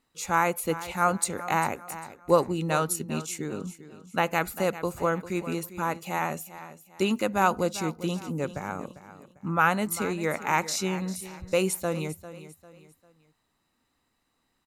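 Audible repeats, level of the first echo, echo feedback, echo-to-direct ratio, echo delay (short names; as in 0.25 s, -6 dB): 3, -14.5 dB, 36%, -14.0 dB, 0.398 s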